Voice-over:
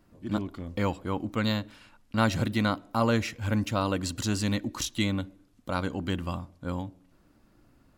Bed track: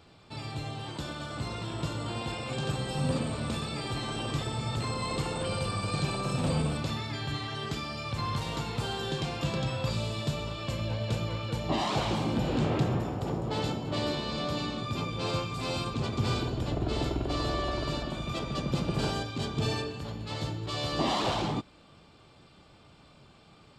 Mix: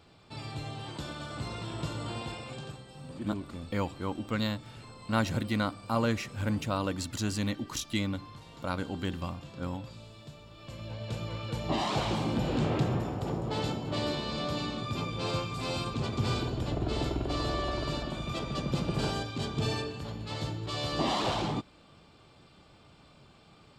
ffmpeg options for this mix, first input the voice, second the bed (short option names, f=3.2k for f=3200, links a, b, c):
-filter_complex "[0:a]adelay=2950,volume=-3.5dB[a];[1:a]volume=13.5dB,afade=t=out:st=2.13:d=0.7:silence=0.188365,afade=t=in:st=10.49:d=1.24:silence=0.16788[b];[a][b]amix=inputs=2:normalize=0"